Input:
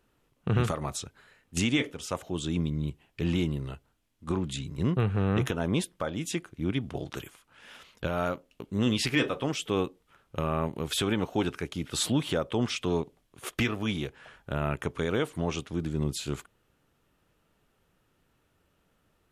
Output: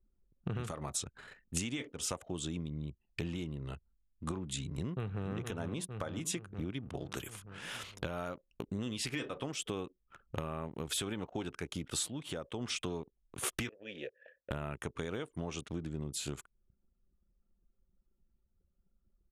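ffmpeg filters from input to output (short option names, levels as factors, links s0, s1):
-filter_complex "[0:a]asplit=2[s0][s1];[s1]afade=t=in:st=4.6:d=0.01,afade=t=out:st=5.28:d=0.01,aecho=0:1:460|920|1380|1840|2300|2760:0.446684|0.223342|0.111671|0.0558354|0.0279177|0.0139589[s2];[s0][s2]amix=inputs=2:normalize=0,asettb=1/sr,asplit=3[s3][s4][s5];[s3]atrim=end=13.694[s6];[s4]atrim=start=13.69:end=14.51,asetpts=PTS-STARTPTS,afade=t=in:d=0.004:c=qsin,afade=t=out:st=0.816:d=0.004:c=qsin,asplit=3[s7][s8][s9];[s7]bandpass=f=530:t=q:w=8,volume=1[s10];[s8]bandpass=f=1840:t=q:w=8,volume=0.501[s11];[s9]bandpass=f=2480:t=q:w=8,volume=0.355[s12];[s10][s11][s12]amix=inputs=3:normalize=0[s13];[s5]atrim=start=14.506[s14];[s6][s13]acrossfade=d=0.004:c1=hsin:c2=qsin[s15];[s15][s14]acrossfade=d=0.004:c1=qsin:c2=hsin,asplit=3[s16][s17][s18];[s16]atrim=end=12.11,asetpts=PTS-STARTPTS,afade=t=out:st=11.96:d=0.15:silence=0.211349[s19];[s17]atrim=start=12.11:end=12.6,asetpts=PTS-STARTPTS,volume=0.211[s20];[s18]atrim=start=12.6,asetpts=PTS-STARTPTS,afade=t=in:d=0.15:silence=0.211349[s21];[s19][s20][s21]concat=n=3:v=0:a=1,acompressor=threshold=0.00794:ratio=8,anlmdn=0.0001,equalizer=f=8900:t=o:w=1.1:g=7,volume=2"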